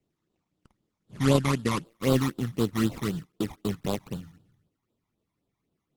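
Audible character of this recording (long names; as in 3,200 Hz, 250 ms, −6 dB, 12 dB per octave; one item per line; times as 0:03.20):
aliases and images of a low sample rate 1,600 Hz, jitter 20%
phaser sweep stages 12, 3.9 Hz, lowest notch 460–2,100 Hz
Opus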